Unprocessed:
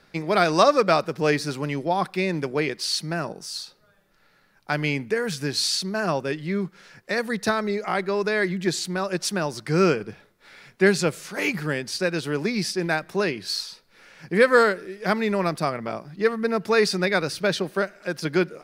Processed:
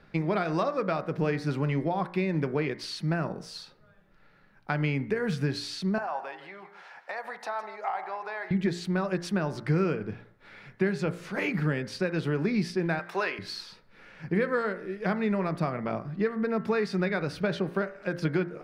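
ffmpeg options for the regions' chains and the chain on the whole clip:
-filter_complex "[0:a]asettb=1/sr,asplit=3[s0][s1][s2];[s0]atrim=end=5.984[s3];[s1]atrim=start=5.98:end=8.51,asetpts=PTS-STARTPTS,afade=t=in:d=0.004:c=qsin,afade=t=out:st=2.526:d=0.004:c=qsin,acompressor=threshold=0.0251:ratio=6:attack=3.2:release=140:knee=1:detection=peak,highpass=f=800:t=q:w=4.9,aecho=1:1:159:0.211,atrim=end_sample=111573[s4];[s2]atrim=start=8.506[s5];[s3][s4]acrossfade=d=0.004:c1=hsin:c2=qsin[s6];[s6][s5]acrossfade=d=0.004:c1=qsin:c2=hsin,asettb=1/sr,asplit=3[s7][s8][s9];[s7]atrim=end=12.994[s10];[s8]atrim=start=12.99:end=13.39,asetpts=PTS-STARTPTS,afade=t=in:d=0.004:c=qsin,afade=t=out:st=0.396:d=0.004:c=qsin,highpass=750,acontrast=77[s11];[s9]atrim=start=13.386[s12];[s10][s11]acrossfade=d=0.004:c1=hsin:c2=qsin[s13];[s13][s12]acrossfade=d=0.004:c1=qsin:c2=hsin,acompressor=threshold=0.0562:ratio=5,bass=f=250:g=6,treble=f=4000:g=-15,bandreject=f=58.03:t=h:w=4,bandreject=f=116.06:t=h:w=4,bandreject=f=174.09:t=h:w=4,bandreject=f=232.12:t=h:w=4,bandreject=f=290.15:t=h:w=4,bandreject=f=348.18:t=h:w=4,bandreject=f=406.21:t=h:w=4,bandreject=f=464.24:t=h:w=4,bandreject=f=522.27:t=h:w=4,bandreject=f=580.3:t=h:w=4,bandreject=f=638.33:t=h:w=4,bandreject=f=696.36:t=h:w=4,bandreject=f=754.39:t=h:w=4,bandreject=f=812.42:t=h:w=4,bandreject=f=870.45:t=h:w=4,bandreject=f=928.48:t=h:w=4,bandreject=f=986.51:t=h:w=4,bandreject=f=1044.54:t=h:w=4,bandreject=f=1102.57:t=h:w=4,bandreject=f=1160.6:t=h:w=4,bandreject=f=1218.63:t=h:w=4,bandreject=f=1276.66:t=h:w=4,bandreject=f=1334.69:t=h:w=4,bandreject=f=1392.72:t=h:w=4,bandreject=f=1450.75:t=h:w=4,bandreject=f=1508.78:t=h:w=4,bandreject=f=1566.81:t=h:w=4,bandreject=f=1624.84:t=h:w=4,bandreject=f=1682.87:t=h:w=4,bandreject=f=1740.9:t=h:w=4,bandreject=f=1798.93:t=h:w=4,bandreject=f=1856.96:t=h:w=4,bandreject=f=1914.99:t=h:w=4,bandreject=f=1973.02:t=h:w=4,bandreject=f=2031.05:t=h:w=4,bandreject=f=2089.08:t=h:w=4,bandreject=f=2147.11:t=h:w=4,bandreject=f=2205.14:t=h:w=4"

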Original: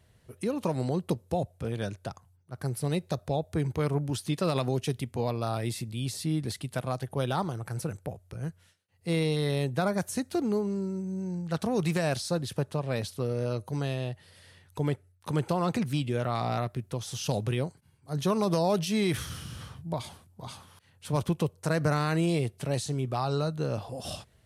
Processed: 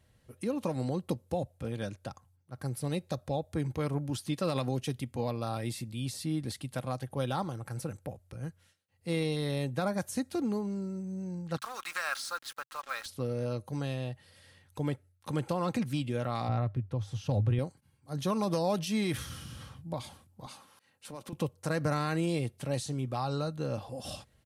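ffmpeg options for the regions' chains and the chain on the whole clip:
-filter_complex "[0:a]asettb=1/sr,asplit=3[s0][s1][s2];[s0]atrim=end=11.574[s3];[s1]atrim=start=11.57:end=13.06,asetpts=PTS-STARTPTS,afade=t=in:d=0.004:c=qsin,afade=t=out:st=1.486:d=0.004:c=qsin,highpass=f=1300:t=q:w=5.1,acrusher=bits=6:mix=0:aa=0.5[s4];[s2]atrim=start=13.056[s5];[s3][s4]acrossfade=d=0.004:c1=hsin:c2=qsin[s6];[s6][s5]acrossfade=d=0.004:c1=qsin:c2=hsin,asettb=1/sr,asplit=3[s7][s8][s9];[s7]atrim=end=16.484[s10];[s8]atrim=start=16.48:end=17.59,asetpts=PTS-STARTPTS,afade=t=in:d=0.004:c=qsin,afade=t=out:st=1.106:d=0.004:c=qsin,lowpass=f=1500:p=1,equalizer=f=100:t=o:w=0.45:g=15[s11];[s9]atrim=start=17.586[s12];[s10][s11]acrossfade=d=0.004:c1=hsin:c2=qsin[s13];[s13][s12]acrossfade=d=0.004:c1=qsin:c2=hsin,asettb=1/sr,asplit=3[s14][s15][s16];[s14]atrim=end=20.464[s17];[s15]atrim=start=20.46:end=21.33,asetpts=PTS-STARTPTS,afade=t=in:d=0.004:c=qsin,afade=t=out:st=0.866:d=0.004:c=qsin,highpass=240,bandreject=f=3300:w=13,acompressor=threshold=0.0126:ratio=3:attack=3.2:release=140:knee=1:detection=peak[s18];[s16]atrim=start=21.326[s19];[s17][s18]acrossfade=d=0.004:c1=hsin:c2=qsin[s20];[s20][s19]acrossfade=d=0.004:c1=qsin:c2=hsin,equalizer=f=130:t=o:w=0.43:g=5,aecho=1:1:3.7:0.37,volume=0.631"

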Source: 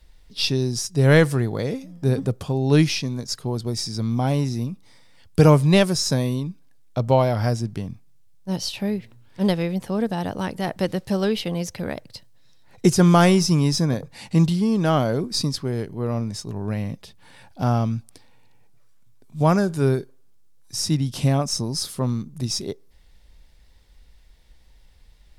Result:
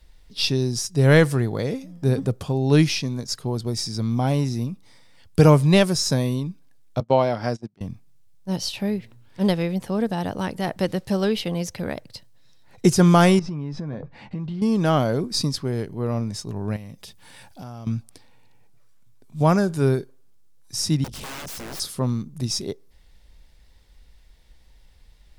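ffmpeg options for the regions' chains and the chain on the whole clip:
-filter_complex "[0:a]asettb=1/sr,asplit=3[s0][s1][s2];[s0]atrim=end=7.004[s3];[s1]atrim=start=7:end=7.81,asetpts=PTS-STARTPTS,afade=t=in:d=0.004:c=qsin,afade=t=out:st=0.806:d=0.004:c=qsin,agate=range=0.0501:threshold=0.0631:ratio=16:release=100:detection=peak,highpass=180,lowpass=6600[s4];[s2]atrim=start=7.806[s5];[s3][s4]acrossfade=d=0.004:c1=hsin:c2=qsin[s6];[s6][s5]acrossfade=d=0.004:c1=qsin:c2=hsin,asettb=1/sr,asplit=3[s7][s8][s9];[s7]atrim=end=13.394[s10];[s8]atrim=start=13.39:end=14.62,asetpts=PTS-STARTPTS,afade=t=in:d=0.004:c=qsin,afade=t=out:st=1.226:d=0.004:c=qsin,lowpass=2100,asplit=2[s11][s12];[s12]adelay=14,volume=0.251[s13];[s11][s13]amix=inputs=2:normalize=0,atrim=end_sample=54243,acompressor=threshold=0.0501:ratio=12:attack=3.2:release=140:knee=1:detection=peak[s14];[s9]atrim=start=14.616[s15];[s10][s14]acrossfade=d=0.004:c1=hsin:c2=qsin[s16];[s16][s15]acrossfade=d=0.004:c1=qsin:c2=hsin,asettb=1/sr,asplit=3[s17][s18][s19];[s17]atrim=end=16.764[s20];[s18]atrim=start=16.76:end=17.87,asetpts=PTS-STARTPTS,afade=t=in:d=0.004:c=qsin,afade=t=out:st=1.106:d=0.004:c=qsin,highshelf=f=4200:g=9,bandreject=f=4200:w=27,acompressor=threshold=0.0158:ratio=5:attack=3.2:release=140:knee=1:detection=peak[s21];[s19]atrim=start=17.866[s22];[s20][s21]acrossfade=d=0.004:c1=hsin:c2=qsin[s23];[s23][s22]acrossfade=d=0.004:c1=qsin:c2=hsin,asettb=1/sr,asplit=3[s24][s25][s26];[s24]atrim=end=21.044[s27];[s25]atrim=start=21.04:end=21.8,asetpts=PTS-STARTPTS,afade=t=in:d=0.004:c=qsin,afade=t=out:st=0.756:d=0.004:c=qsin,aeval=exprs='val(0)+0.0126*(sin(2*PI*50*n/s)+sin(2*PI*2*50*n/s)/2+sin(2*PI*3*50*n/s)/3+sin(2*PI*4*50*n/s)/4+sin(2*PI*5*50*n/s)/5)':c=same,aeval=exprs='(mod(15.8*val(0)+1,2)-1)/15.8':c=same,aeval=exprs='(tanh(44.7*val(0)+0.45)-tanh(0.45))/44.7':c=same[s28];[s26]atrim=start=21.796[s29];[s27][s28]acrossfade=d=0.004:c1=hsin:c2=qsin[s30];[s30][s29]acrossfade=d=0.004:c1=qsin:c2=hsin"

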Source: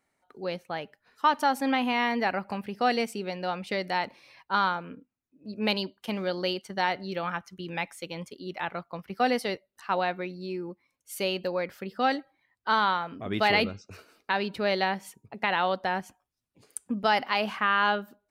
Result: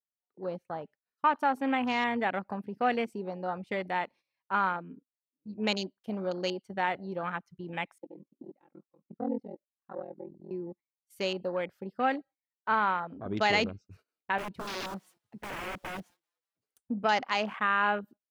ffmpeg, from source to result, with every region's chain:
-filter_complex "[0:a]asettb=1/sr,asplit=3[s0][s1][s2];[s0]atrim=end=7.984[s3];[s1]atrim=start=7.98:end=10.51,asetpts=PTS-STARTPTS,afade=t=in:d=0.004:c=qsin,afade=t=out:st=2.526:d=0.004:c=qsin,bandpass=f=300:t=q:w=1.7,aecho=1:1:3.7:0.75,atrim=end_sample=111573,aeval=exprs='val(0)*sin(2*PI*21*n/s)':c=same[s4];[s2]atrim=start=10.506[s5];[s3][s4]acrossfade=d=0.004:c1=hsin:c2=qsin[s6];[s6][s5]acrossfade=d=0.004:c1=qsin:c2=hsin,asettb=1/sr,asplit=3[s7][s8][s9];[s7]atrim=end=14.384[s10];[s8]atrim=start=14.38:end=16.79,asetpts=PTS-STARTPTS,afade=t=in:d=0.004:c=qsin,afade=t=out:st=2.406:d=0.004:c=qsin,aeval=exprs='(mod(22.4*val(0)+1,2)-1)/22.4':c=same,asplit=5[s11][s12][s13][s14][s15];[s12]adelay=194,afreqshift=150,volume=0.0794[s16];[s13]adelay=388,afreqshift=300,volume=0.0422[s17];[s14]adelay=582,afreqshift=450,volume=0.0224[s18];[s15]adelay=776,afreqshift=600,volume=0.0119[s19];[s11][s16][s17][s18][s19]amix=inputs=5:normalize=0,atrim=end_sample=106281[s20];[s9]atrim=start=16.786[s21];[s10][s20]acrossfade=d=0.004:c1=hsin:c2=qsin[s22];[s22][s21]acrossfade=d=0.004:c1=qsin:c2=hsin,agate=range=0.2:threshold=0.00398:ratio=16:detection=peak,afwtdn=0.0178,volume=0.75"

